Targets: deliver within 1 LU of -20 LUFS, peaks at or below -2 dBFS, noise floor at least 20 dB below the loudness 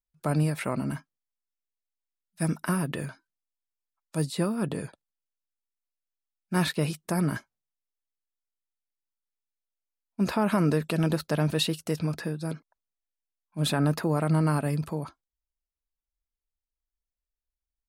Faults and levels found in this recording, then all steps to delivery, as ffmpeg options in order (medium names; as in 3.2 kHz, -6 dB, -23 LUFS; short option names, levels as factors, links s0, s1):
loudness -28.5 LUFS; peak level -13.5 dBFS; loudness target -20.0 LUFS
-> -af "volume=2.66"